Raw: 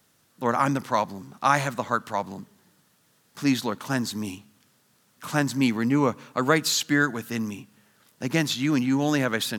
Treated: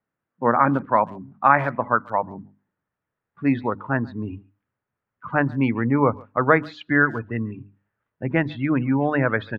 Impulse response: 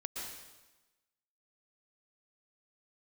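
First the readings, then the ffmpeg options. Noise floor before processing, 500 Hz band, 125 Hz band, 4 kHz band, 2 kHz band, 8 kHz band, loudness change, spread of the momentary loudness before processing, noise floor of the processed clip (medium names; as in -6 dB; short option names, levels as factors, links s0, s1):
-65 dBFS, +4.5 dB, +4.0 dB, under -15 dB, +4.0 dB, under -35 dB, +3.0 dB, 12 LU, -85 dBFS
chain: -filter_complex "[0:a]afftdn=nr=21:nf=-33,lowpass=f=2100:w=0.5412,lowpass=f=2100:w=1.3066,bandreject=f=50:t=h:w=6,bandreject=f=100:t=h:w=6,bandreject=f=150:t=h:w=6,bandreject=f=200:t=h:w=6,bandreject=f=250:t=h:w=6,bandreject=f=300:t=h:w=6,asubboost=boost=11:cutoff=57,asplit=2[s0][s1];[s1]adelay=140,highpass=300,lowpass=3400,asoftclip=type=hard:threshold=0.178,volume=0.0631[s2];[s0][s2]amix=inputs=2:normalize=0,volume=1.88"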